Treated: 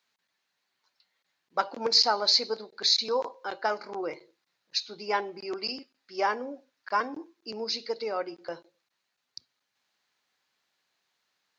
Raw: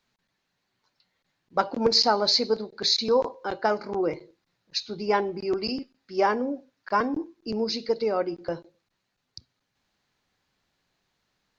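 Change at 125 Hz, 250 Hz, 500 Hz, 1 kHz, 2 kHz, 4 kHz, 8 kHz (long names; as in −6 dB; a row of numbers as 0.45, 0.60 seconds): below −10 dB, −11.0 dB, −7.0 dB, −3.0 dB, −1.0 dB, 0.0 dB, can't be measured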